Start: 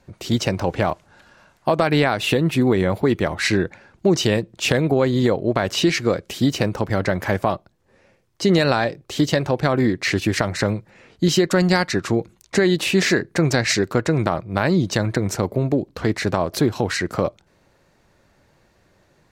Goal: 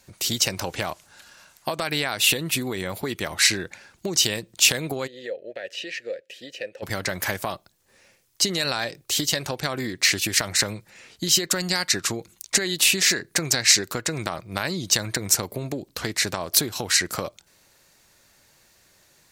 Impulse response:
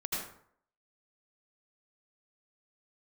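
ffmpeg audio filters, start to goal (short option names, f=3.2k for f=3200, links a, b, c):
-filter_complex "[0:a]asplit=3[a][b][c];[a]afade=t=out:st=5.06:d=0.02[d];[b]asplit=3[e][f][g];[e]bandpass=f=530:t=q:w=8,volume=0dB[h];[f]bandpass=f=1.84k:t=q:w=8,volume=-6dB[i];[g]bandpass=f=2.48k:t=q:w=8,volume=-9dB[j];[h][i][j]amix=inputs=3:normalize=0,afade=t=in:st=5.06:d=0.02,afade=t=out:st=6.82:d=0.02[k];[c]afade=t=in:st=6.82:d=0.02[l];[d][k][l]amix=inputs=3:normalize=0,acompressor=threshold=-19dB:ratio=6,crystalizer=i=9.5:c=0,volume=-7.5dB"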